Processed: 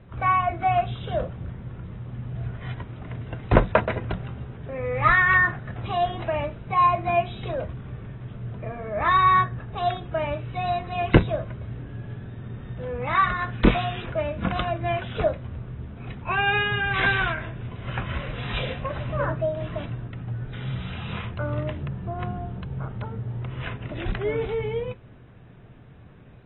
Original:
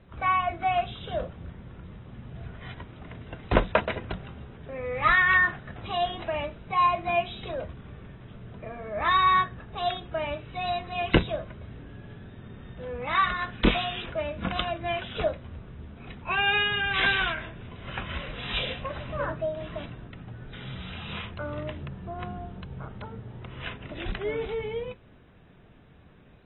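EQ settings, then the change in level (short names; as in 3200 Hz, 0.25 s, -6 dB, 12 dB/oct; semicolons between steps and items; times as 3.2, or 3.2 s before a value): dynamic EQ 3100 Hz, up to -5 dB, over -42 dBFS, Q 2; air absorption 200 m; bell 120 Hz +8.5 dB 0.32 oct; +4.5 dB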